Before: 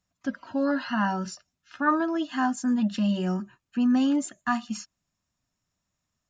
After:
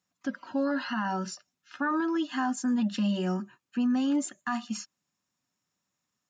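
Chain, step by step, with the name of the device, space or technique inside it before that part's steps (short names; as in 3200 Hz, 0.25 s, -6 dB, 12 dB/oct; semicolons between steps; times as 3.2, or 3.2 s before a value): PA system with an anti-feedback notch (HPF 180 Hz 12 dB/oct; Butterworth band-stop 650 Hz, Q 7.6; limiter -21 dBFS, peak gain reduction 9 dB)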